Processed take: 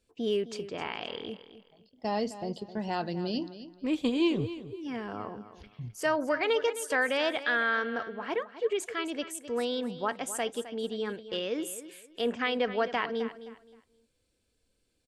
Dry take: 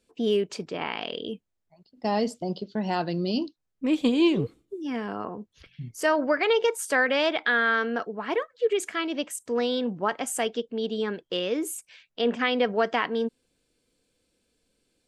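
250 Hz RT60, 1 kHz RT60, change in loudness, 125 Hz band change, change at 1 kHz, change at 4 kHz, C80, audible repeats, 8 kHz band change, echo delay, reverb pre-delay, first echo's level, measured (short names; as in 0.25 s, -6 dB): none, none, -5.0 dB, -4.5 dB, -4.5 dB, -4.5 dB, none, 2, -4.5 dB, 0.261 s, none, -13.5 dB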